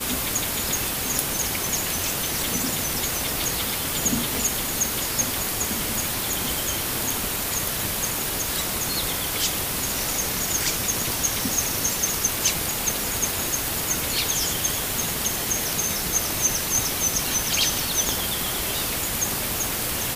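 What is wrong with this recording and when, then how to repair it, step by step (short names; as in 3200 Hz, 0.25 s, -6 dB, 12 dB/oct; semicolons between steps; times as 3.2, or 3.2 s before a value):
crackle 26/s -29 dBFS
4.35 pop
18.09 pop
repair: de-click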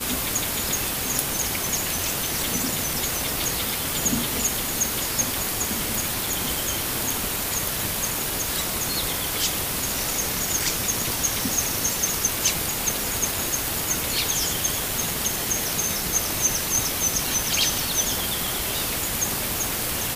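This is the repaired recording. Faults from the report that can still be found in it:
none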